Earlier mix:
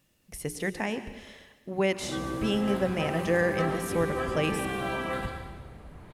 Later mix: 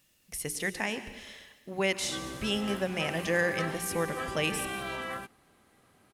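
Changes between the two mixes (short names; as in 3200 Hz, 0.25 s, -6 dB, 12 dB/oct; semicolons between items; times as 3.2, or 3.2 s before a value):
first sound: send off; second sound: muted; master: add tilt shelf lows -5 dB, about 1300 Hz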